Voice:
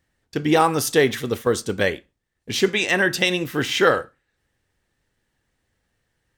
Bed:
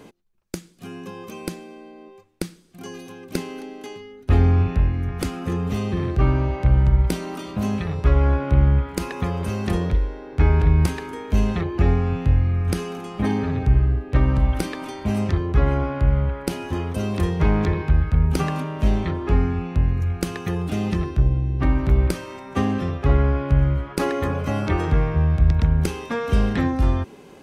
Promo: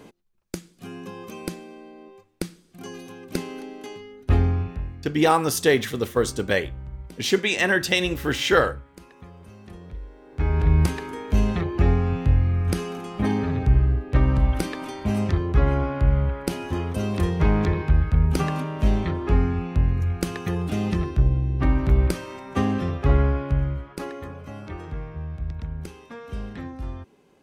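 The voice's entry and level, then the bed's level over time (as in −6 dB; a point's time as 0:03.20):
4.70 s, −1.5 dB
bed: 0:04.31 −1.5 dB
0:05.20 −20 dB
0:09.79 −20 dB
0:10.73 −1 dB
0:23.21 −1 dB
0:24.36 −14 dB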